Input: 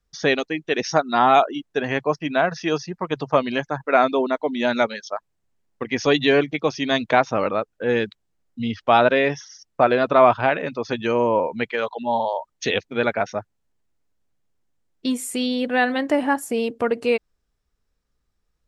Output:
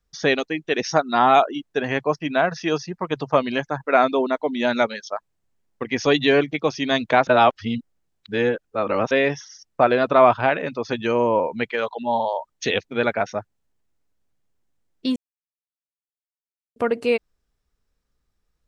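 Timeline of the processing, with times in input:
7.27–9.11 reverse
15.16–16.76 mute

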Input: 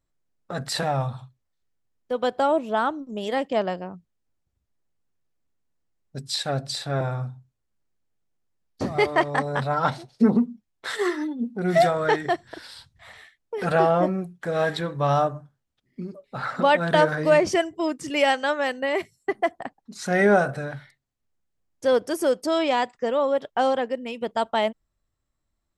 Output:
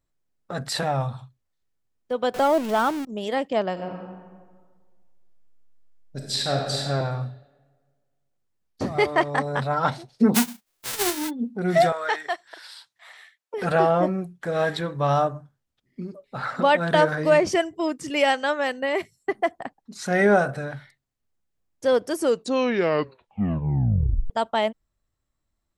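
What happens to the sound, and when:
2.34–3.05 zero-crossing step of -28 dBFS
3.72–6.81 reverb throw, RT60 1.6 s, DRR -0.5 dB
10.34–11.29 spectral whitening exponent 0.1
11.92–13.54 HPF 790 Hz
22.14 tape stop 2.16 s

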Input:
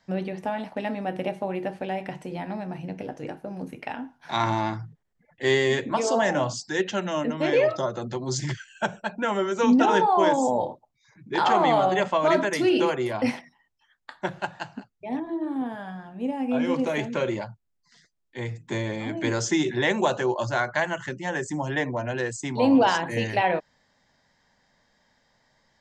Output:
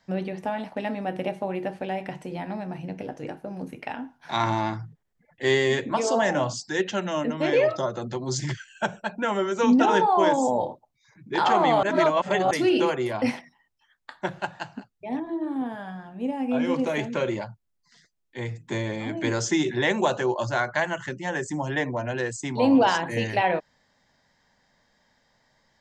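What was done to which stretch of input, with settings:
11.83–12.51 reverse

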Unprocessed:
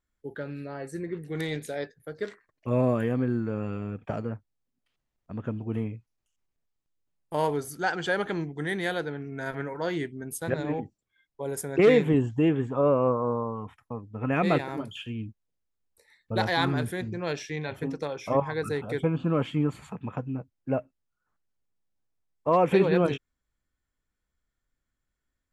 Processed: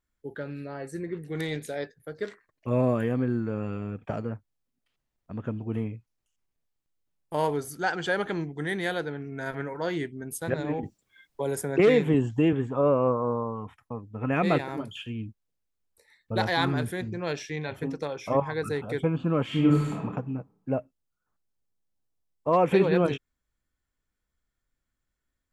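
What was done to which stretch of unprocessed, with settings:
10.83–12.53 three-band squash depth 40%
19.44–19.99 reverb throw, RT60 0.86 s, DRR -5 dB
20.69–22.53 bell 1900 Hz -4.5 dB 1.7 oct

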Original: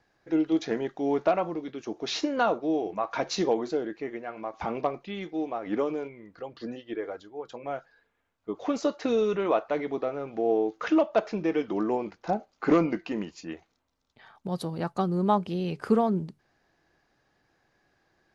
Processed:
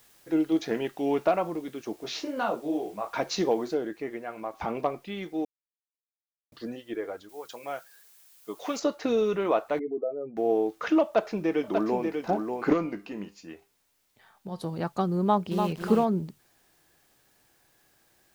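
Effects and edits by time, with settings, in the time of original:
0.74–1.24 bell 2700 Hz +13 dB 0.41 oct
1.96–3.14 detuned doubles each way 50 cents
3.74 noise floor step -60 dB -67 dB
5.45–6.52 mute
7.29–8.8 tilt +3 dB/oct
9.79–10.37 spectral contrast raised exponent 2.4
11.04–12.03 echo throw 0.59 s, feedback 10%, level -5 dB
12.73–14.64 resonator 100 Hz, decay 0.3 s
15.22–16.06 lo-fi delay 0.293 s, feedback 35%, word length 7-bit, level -5 dB

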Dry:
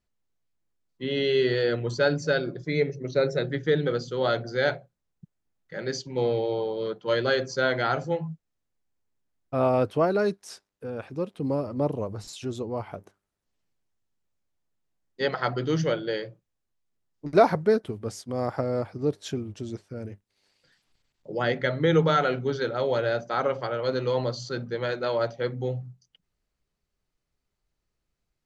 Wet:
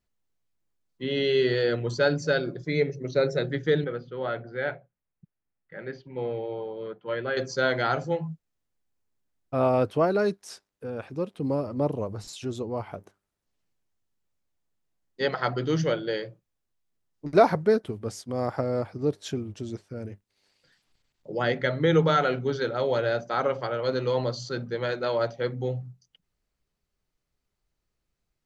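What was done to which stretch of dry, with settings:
3.84–7.37 ladder low-pass 3000 Hz, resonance 25%

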